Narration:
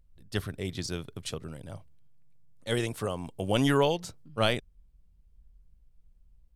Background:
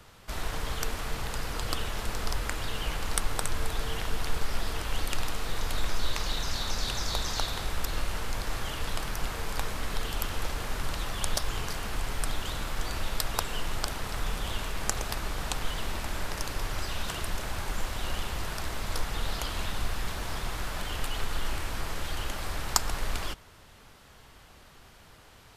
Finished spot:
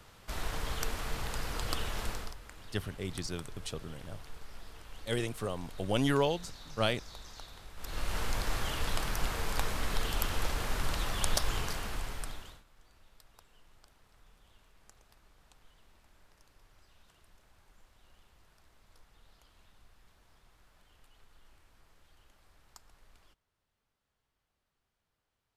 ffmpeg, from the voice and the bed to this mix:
ffmpeg -i stem1.wav -i stem2.wav -filter_complex "[0:a]adelay=2400,volume=-4dB[link_01];[1:a]volume=14.5dB,afade=type=out:start_time=2.06:duration=0.29:silence=0.177828,afade=type=in:start_time=7.76:duration=0.44:silence=0.133352,afade=type=out:start_time=11.51:duration=1.12:silence=0.0316228[link_02];[link_01][link_02]amix=inputs=2:normalize=0" out.wav

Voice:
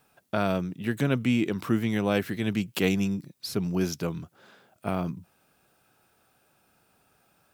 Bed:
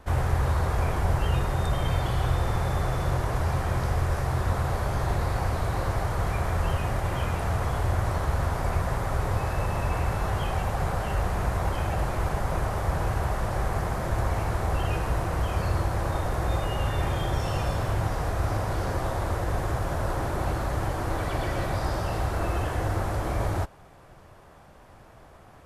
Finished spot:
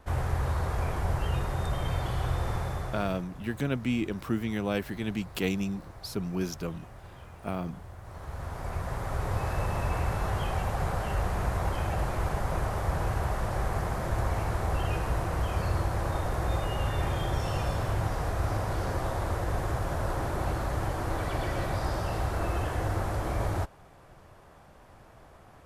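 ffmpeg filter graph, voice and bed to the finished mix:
ffmpeg -i stem1.wav -i stem2.wav -filter_complex "[0:a]adelay=2600,volume=-4.5dB[link_01];[1:a]volume=13dB,afade=type=out:start_time=2.53:duration=0.75:silence=0.16788,afade=type=in:start_time=8.02:duration=1.5:silence=0.133352[link_02];[link_01][link_02]amix=inputs=2:normalize=0" out.wav

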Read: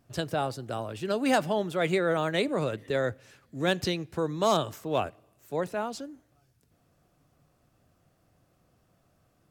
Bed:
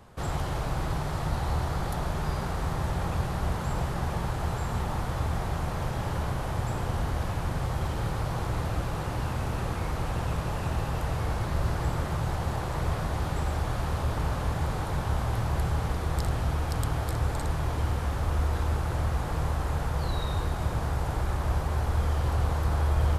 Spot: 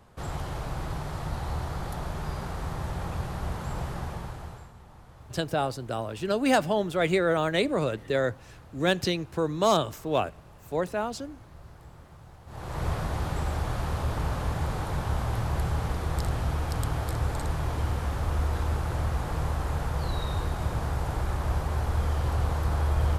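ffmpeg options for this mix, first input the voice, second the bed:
ffmpeg -i stem1.wav -i stem2.wav -filter_complex "[0:a]adelay=5200,volume=2dB[link_01];[1:a]volume=16.5dB,afade=type=out:start_time=3.94:duration=0.79:silence=0.141254,afade=type=in:start_time=12.46:duration=0.4:silence=0.1[link_02];[link_01][link_02]amix=inputs=2:normalize=0" out.wav

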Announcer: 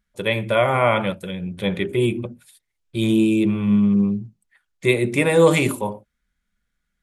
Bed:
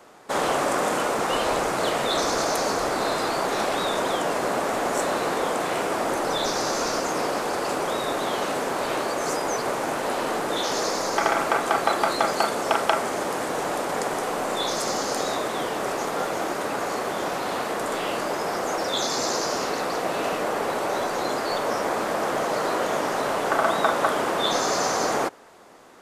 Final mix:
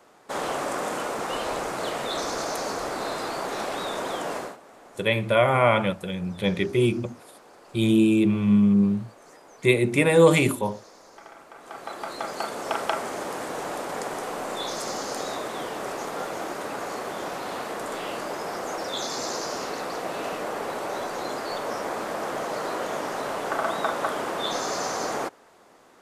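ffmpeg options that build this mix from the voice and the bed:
ffmpeg -i stem1.wav -i stem2.wav -filter_complex "[0:a]adelay=4800,volume=-1.5dB[link_01];[1:a]volume=14dB,afade=type=out:start_time=4.36:duration=0.21:silence=0.112202,afade=type=in:start_time=11.55:duration=1.28:silence=0.105925[link_02];[link_01][link_02]amix=inputs=2:normalize=0" out.wav

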